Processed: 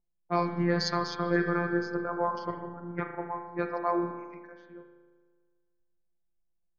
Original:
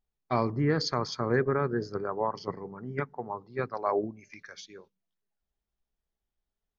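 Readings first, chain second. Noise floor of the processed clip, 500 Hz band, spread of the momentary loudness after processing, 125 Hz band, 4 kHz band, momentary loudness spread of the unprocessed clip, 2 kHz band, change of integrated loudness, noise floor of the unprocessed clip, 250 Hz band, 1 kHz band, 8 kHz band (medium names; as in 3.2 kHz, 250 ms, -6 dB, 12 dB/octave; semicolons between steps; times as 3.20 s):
-76 dBFS, -1.5 dB, 14 LU, -2.5 dB, 0.0 dB, 19 LU, +3.0 dB, 0.0 dB, under -85 dBFS, +2.0 dB, +1.0 dB, no reading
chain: robot voice 173 Hz; spring tank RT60 1.7 s, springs 37 ms, chirp 40 ms, DRR 4.5 dB; level-controlled noise filter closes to 630 Hz, open at -25.5 dBFS; trim +2.5 dB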